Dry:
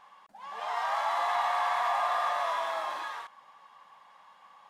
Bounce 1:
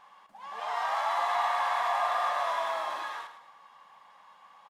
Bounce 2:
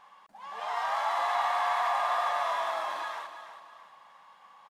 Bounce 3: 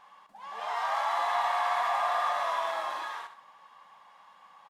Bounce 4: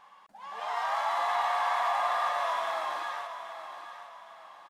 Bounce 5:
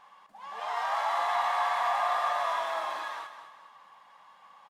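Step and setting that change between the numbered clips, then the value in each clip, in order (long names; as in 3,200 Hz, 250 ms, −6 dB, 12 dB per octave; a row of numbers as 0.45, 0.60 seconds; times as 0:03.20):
repeating echo, delay time: 107, 329, 66, 818, 211 milliseconds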